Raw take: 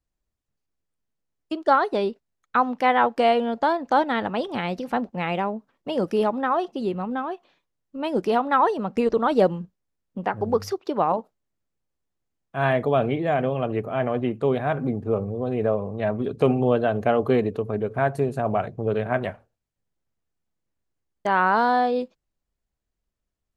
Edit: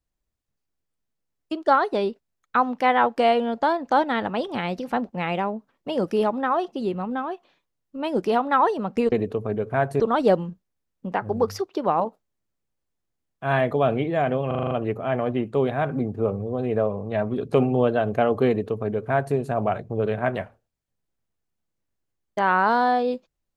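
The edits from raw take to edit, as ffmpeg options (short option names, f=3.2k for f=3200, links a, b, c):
-filter_complex "[0:a]asplit=9[a][b][c][d][e][f][g][h][i];[a]atrim=end=9.122[j];[b]atrim=start=17.358:end=18.242[k];[c]atrim=start=9.118:end=13.632[l];[d]atrim=start=13.588:end=13.632[m];[e]atrim=start=13.588:end=13.632[n];[f]atrim=start=13.588:end=13.632[o];[g]atrim=start=13.588:end=13.632[p];[h]atrim=start=13.588:end=13.632[q];[i]atrim=start=13.588[r];[j][k]acrossfade=d=0.004:c1=hsin:c2=hsin[s];[s][l]acrossfade=d=0.004:c1=hsin:c2=hsin[t];[t][m]acrossfade=d=0.004:c1=hsin:c2=hsin[u];[u][n]acrossfade=d=0.004:c1=hsin:c2=hsin[v];[v][o]acrossfade=d=0.004:c1=hsin:c2=hsin[w];[w][p]acrossfade=d=0.004:c1=hsin:c2=hsin[x];[x][q]acrossfade=d=0.004:c1=hsin:c2=hsin[y];[y][r]acrossfade=d=0.004:c1=hsin:c2=hsin"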